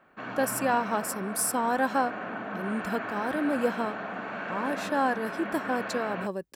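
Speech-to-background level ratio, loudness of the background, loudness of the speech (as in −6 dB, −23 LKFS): 5.5 dB, −35.5 LKFS, −30.0 LKFS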